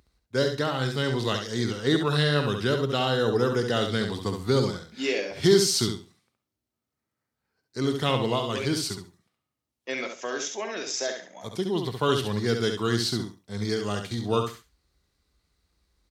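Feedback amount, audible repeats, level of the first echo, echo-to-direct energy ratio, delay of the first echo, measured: 21%, 3, −6.0 dB, −6.0 dB, 68 ms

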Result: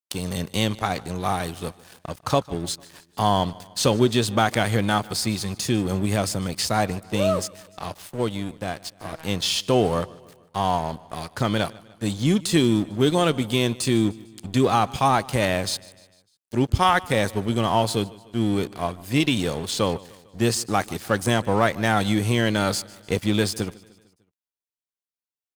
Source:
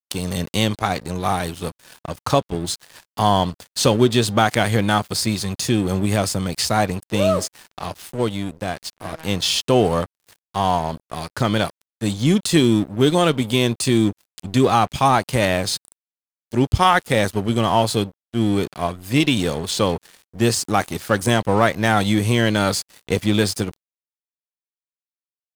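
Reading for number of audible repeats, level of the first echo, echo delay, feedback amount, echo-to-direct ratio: 3, −22.0 dB, 150 ms, 52%, −20.5 dB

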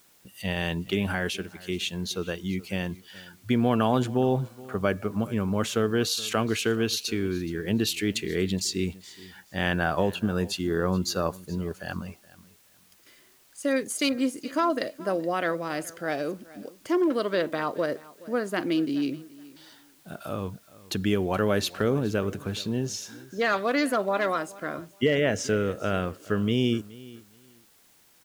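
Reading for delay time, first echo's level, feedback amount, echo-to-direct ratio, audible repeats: 423 ms, −20.5 dB, 21%, −20.5 dB, 2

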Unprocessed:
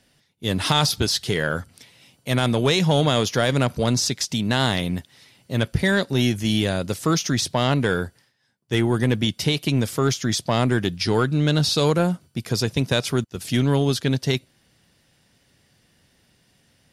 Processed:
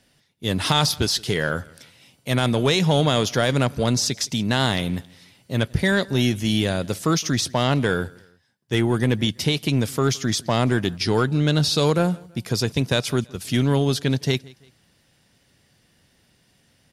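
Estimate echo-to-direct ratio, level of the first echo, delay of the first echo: −23.5 dB, −24.0 dB, 166 ms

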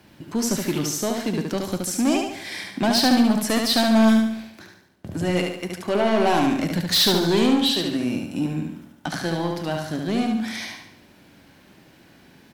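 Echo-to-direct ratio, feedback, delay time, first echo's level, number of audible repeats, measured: −3.0 dB, 46%, 72 ms, −4.0 dB, 5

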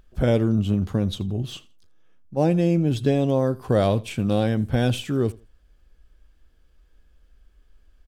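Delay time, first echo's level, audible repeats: 82 ms, −22.0 dB, 2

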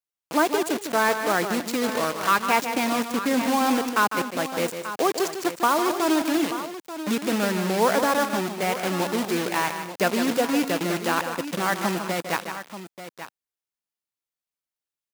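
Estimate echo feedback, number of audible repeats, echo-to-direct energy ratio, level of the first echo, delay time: repeats not evenly spaced, 3, −6.5 dB, −8.5 dB, 152 ms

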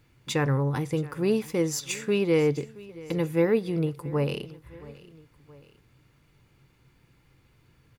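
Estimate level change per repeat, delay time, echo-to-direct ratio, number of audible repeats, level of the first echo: −5.5 dB, 673 ms, −19.0 dB, 2, −20.0 dB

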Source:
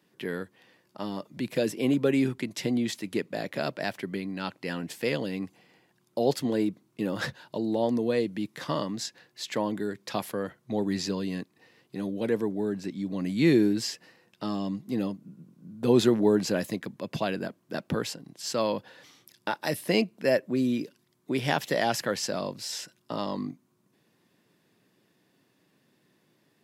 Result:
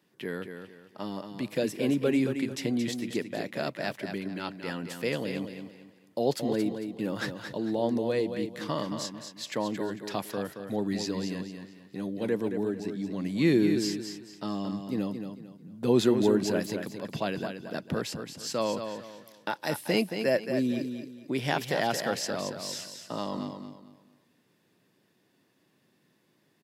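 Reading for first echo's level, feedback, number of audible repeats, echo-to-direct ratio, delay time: −7.5 dB, 31%, 3, −7.0 dB, 224 ms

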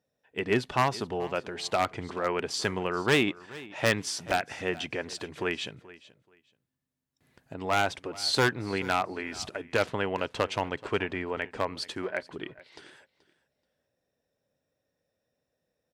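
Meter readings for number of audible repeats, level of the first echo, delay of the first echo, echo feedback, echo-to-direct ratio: 2, −19.5 dB, 430 ms, 20%, −19.5 dB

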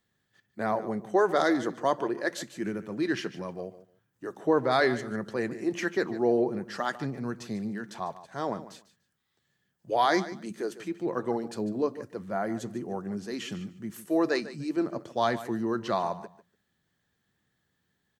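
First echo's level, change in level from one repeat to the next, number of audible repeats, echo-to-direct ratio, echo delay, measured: −15.0 dB, −15.0 dB, 2, −15.0 dB, 147 ms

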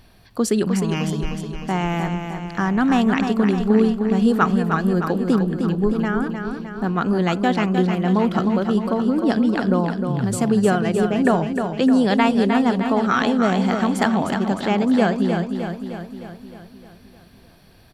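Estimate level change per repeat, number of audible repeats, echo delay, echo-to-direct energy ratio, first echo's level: −4.5 dB, 7, 307 ms, −4.5 dB, −6.5 dB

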